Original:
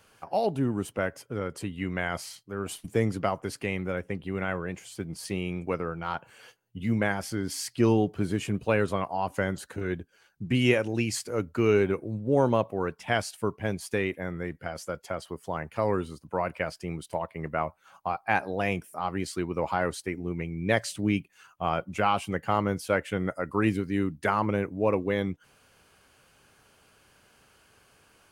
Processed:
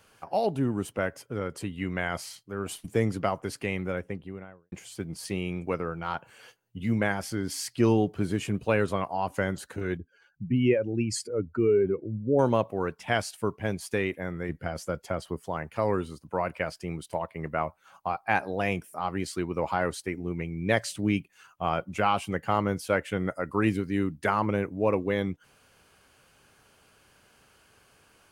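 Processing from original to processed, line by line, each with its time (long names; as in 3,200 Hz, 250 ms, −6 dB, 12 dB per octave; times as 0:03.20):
0:03.87–0:04.72: fade out and dull
0:09.97–0:12.39: expanding power law on the bin magnitudes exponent 1.7
0:14.49–0:15.42: low-shelf EQ 380 Hz +6.5 dB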